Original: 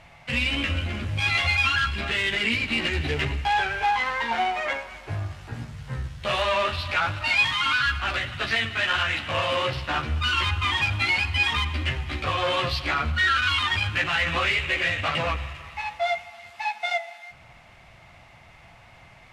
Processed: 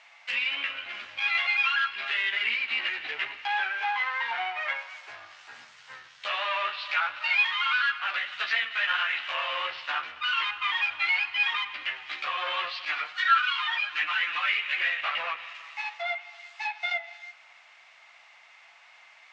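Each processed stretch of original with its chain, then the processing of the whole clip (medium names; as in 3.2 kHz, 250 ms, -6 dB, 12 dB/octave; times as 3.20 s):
12.85–14.78 s: bass shelf 190 Hz -5 dB + comb 6.6 ms, depth 87% + three-phase chorus
whole clip: steep low-pass 7.5 kHz 36 dB/octave; low-pass that closes with the level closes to 2.8 kHz, closed at -22.5 dBFS; high-pass 1.2 kHz 12 dB/octave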